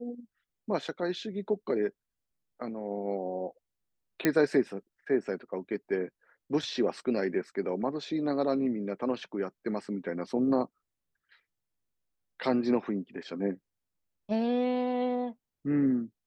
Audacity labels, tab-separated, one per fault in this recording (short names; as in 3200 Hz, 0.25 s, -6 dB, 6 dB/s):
4.250000	4.250000	pop -10 dBFS